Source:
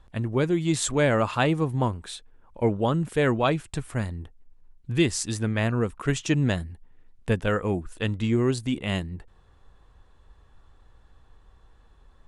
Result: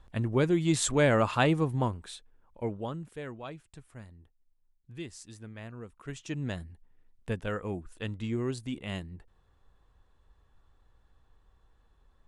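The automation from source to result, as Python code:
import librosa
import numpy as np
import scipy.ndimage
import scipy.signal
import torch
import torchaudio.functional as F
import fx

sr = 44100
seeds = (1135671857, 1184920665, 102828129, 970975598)

y = fx.gain(x, sr, db=fx.line((1.52, -2.0), (2.82, -11.5), (3.3, -19.0), (5.82, -19.0), (6.62, -9.0)))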